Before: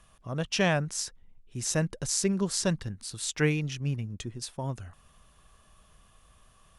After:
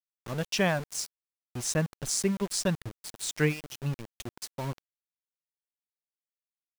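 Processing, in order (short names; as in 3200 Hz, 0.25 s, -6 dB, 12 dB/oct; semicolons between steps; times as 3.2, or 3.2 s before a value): reverb removal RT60 1.3 s; sample gate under -35.5 dBFS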